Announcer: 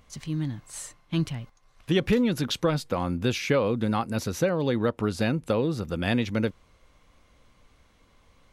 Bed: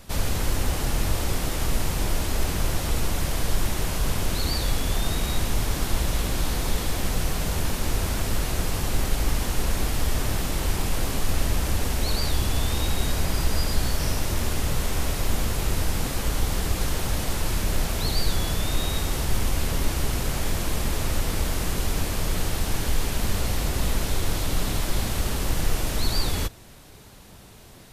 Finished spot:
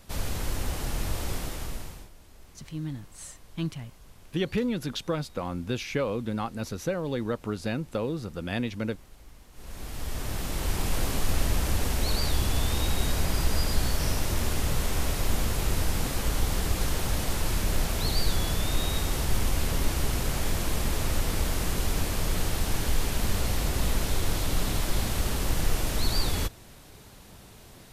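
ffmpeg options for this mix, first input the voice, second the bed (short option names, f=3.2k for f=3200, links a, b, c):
-filter_complex "[0:a]adelay=2450,volume=-5dB[a];[1:a]volume=19.5dB,afade=t=out:st=1.35:d=0.75:silence=0.0841395,afade=t=in:st=9.52:d=1.43:silence=0.0530884[b];[a][b]amix=inputs=2:normalize=0"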